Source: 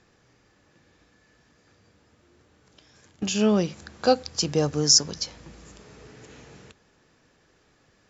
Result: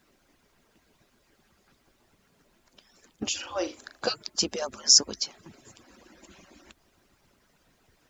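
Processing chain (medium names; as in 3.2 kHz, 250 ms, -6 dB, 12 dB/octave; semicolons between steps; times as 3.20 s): harmonic-percussive separation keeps percussive; 3.39–4.02 s: flutter echo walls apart 6.8 m, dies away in 0.25 s; added noise pink -70 dBFS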